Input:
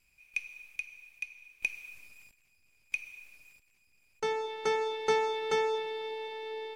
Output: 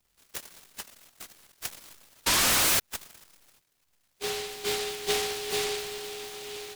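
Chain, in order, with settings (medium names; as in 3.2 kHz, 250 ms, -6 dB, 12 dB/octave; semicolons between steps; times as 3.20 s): frequency axis rescaled in octaves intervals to 90%; painted sound rise, 2.26–2.80 s, 910–2100 Hz -23 dBFS; delay time shaken by noise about 3.2 kHz, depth 0.26 ms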